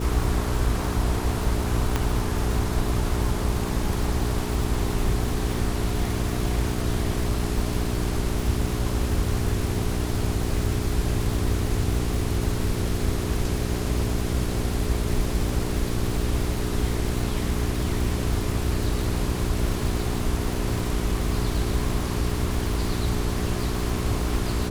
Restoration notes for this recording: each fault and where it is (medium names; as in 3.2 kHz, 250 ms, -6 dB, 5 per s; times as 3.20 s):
crackle 440 per s -31 dBFS
hum 60 Hz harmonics 7 -29 dBFS
1.96 s: pop -9 dBFS